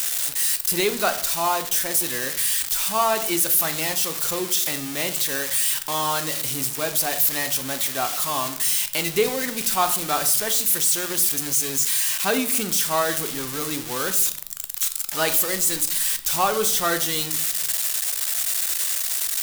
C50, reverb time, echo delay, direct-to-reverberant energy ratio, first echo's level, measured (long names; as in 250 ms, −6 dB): 13.0 dB, 0.60 s, no echo audible, 8.5 dB, no echo audible